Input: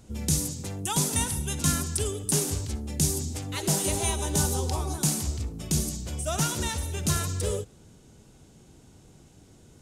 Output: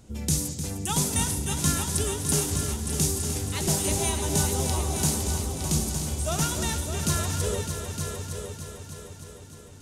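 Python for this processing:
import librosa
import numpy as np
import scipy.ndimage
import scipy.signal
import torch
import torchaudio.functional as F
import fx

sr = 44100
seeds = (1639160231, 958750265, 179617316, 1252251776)

y = fx.echo_heads(x, sr, ms=304, heads='all three', feedback_pct=50, wet_db=-10.5)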